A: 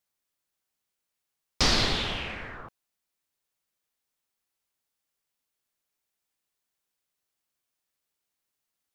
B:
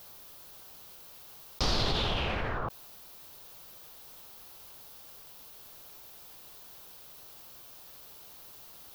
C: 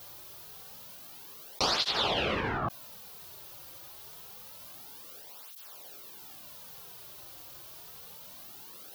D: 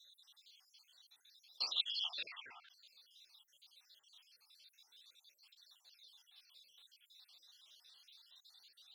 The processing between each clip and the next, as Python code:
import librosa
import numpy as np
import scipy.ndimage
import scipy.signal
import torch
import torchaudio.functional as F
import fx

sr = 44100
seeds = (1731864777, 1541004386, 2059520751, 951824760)

y1 = fx.graphic_eq(x, sr, hz=(250, 2000, 8000), db=(-5, -10, -11))
y1 = fx.env_flatten(y1, sr, amount_pct=70)
y1 = y1 * librosa.db_to_amplitude(-3.5)
y2 = fx.flanger_cancel(y1, sr, hz=0.27, depth_ms=4.8)
y2 = y2 * librosa.db_to_amplitude(6.0)
y3 = fx.spec_dropout(y2, sr, seeds[0], share_pct=65)
y3 = fx.bandpass_q(y3, sr, hz=3700.0, q=4.0)
y3 = y3 * librosa.db_to_amplitude(1.0)